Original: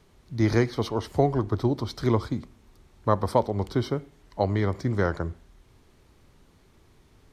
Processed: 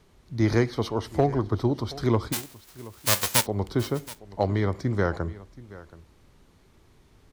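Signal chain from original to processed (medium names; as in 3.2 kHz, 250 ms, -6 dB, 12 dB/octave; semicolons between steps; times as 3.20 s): 2.32–3.45 s: formants flattened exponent 0.1; overload inside the chain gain 10.5 dB; delay 726 ms -19 dB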